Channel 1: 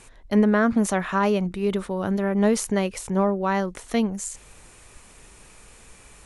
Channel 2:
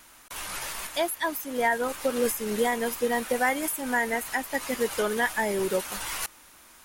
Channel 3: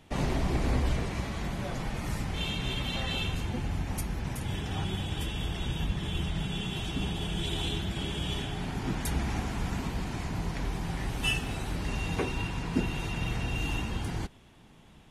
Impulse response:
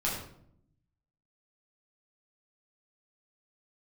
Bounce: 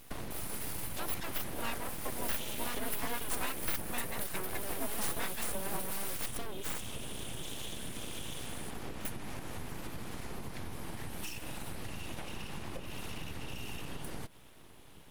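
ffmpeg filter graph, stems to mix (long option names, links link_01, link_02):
-filter_complex "[0:a]asoftclip=type=hard:threshold=-24dB,adelay=2450,volume=0dB,asplit=3[link_01][link_02][link_03];[link_01]atrim=end=3.52,asetpts=PTS-STARTPTS,afade=type=out:start_time=3.516:duration=0.004:curve=hsin[link_04];[link_02]atrim=start=3.52:end=4.19,asetpts=PTS-STARTPTS,volume=0[link_05];[link_03]atrim=start=4.19,asetpts=PTS-STARTPTS,afade=type=in:duration=0.004:curve=hsin[link_06];[link_04][link_05][link_06]concat=n=3:v=0:a=1[link_07];[1:a]volume=-11.5dB[link_08];[2:a]acompressor=threshold=-35dB:ratio=6,volume=1.5dB[link_09];[link_07][link_09]amix=inputs=2:normalize=0,acompressor=threshold=-35dB:ratio=5,volume=0dB[link_10];[link_08][link_10]amix=inputs=2:normalize=0,aexciter=amount=3.4:drive=6.7:freq=9200,aeval=exprs='abs(val(0))':channel_layout=same"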